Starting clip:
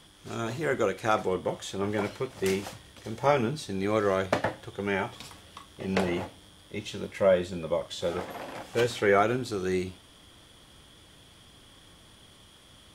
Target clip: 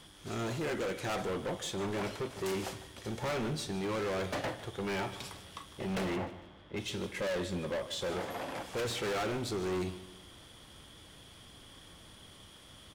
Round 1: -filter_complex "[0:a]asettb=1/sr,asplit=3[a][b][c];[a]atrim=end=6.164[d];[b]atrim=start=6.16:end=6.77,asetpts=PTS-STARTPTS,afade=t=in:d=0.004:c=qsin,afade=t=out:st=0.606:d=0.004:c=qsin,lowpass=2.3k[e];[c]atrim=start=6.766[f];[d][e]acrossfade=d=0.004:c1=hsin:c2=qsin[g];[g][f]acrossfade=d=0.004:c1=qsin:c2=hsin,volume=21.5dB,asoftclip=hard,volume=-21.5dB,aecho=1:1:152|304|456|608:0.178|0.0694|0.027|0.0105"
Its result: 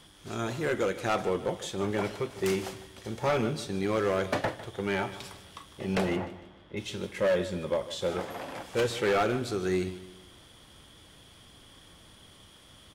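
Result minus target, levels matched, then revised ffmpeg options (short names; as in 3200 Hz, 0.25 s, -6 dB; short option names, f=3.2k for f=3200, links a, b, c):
overloaded stage: distortion -7 dB
-filter_complex "[0:a]asettb=1/sr,asplit=3[a][b][c];[a]atrim=end=6.164[d];[b]atrim=start=6.16:end=6.77,asetpts=PTS-STARTPTS,afade=t=in:d=0.004:c=qsin,afade=t=out:st=0.606:d=0.004:c=qsin,lowpass=2.3k[e];[c]atrim=start=6.766[f];[d][e]acrossfade=d=0.004:c1=hsin:c2=qsin[g];[g][f]acrossfade=d=0.004:c1=qsin:c2=hsin,volume=32dB,asoftclip=hard,volume=-32dB,aecho=1:1:152|304|456|608:0.178|0.0694|0.027|0.0105"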